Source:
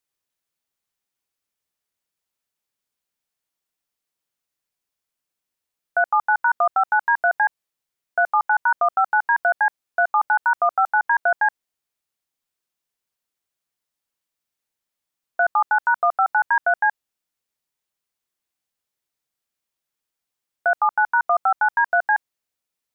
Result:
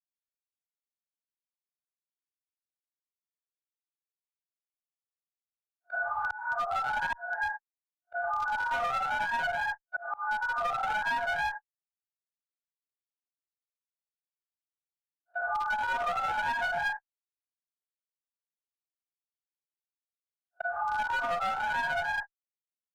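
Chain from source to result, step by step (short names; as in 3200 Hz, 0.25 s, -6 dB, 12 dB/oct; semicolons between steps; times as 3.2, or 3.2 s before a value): phase scrambler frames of 0.2 s; gate -25 dBFS, range -57 dB; auto swell 0.757 s; one-sided clip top -23 dBFS, bottom -13.5 dBFS; three-band squash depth 100%; gain -7.5 dB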